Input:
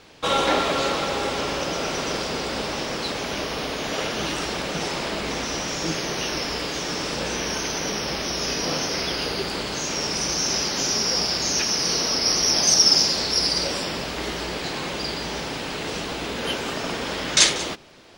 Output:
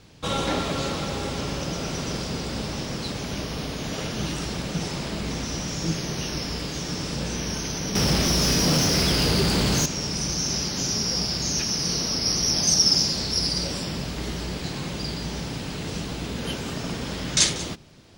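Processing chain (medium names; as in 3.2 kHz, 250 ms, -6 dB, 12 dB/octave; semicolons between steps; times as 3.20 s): tone controls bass +10 dB, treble +6 dB; 7.95–9.86 s: waveshaping leveller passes 3; peaking EQ 120 Hz +5.5 dB 2.3 oct; trim -7.5 dB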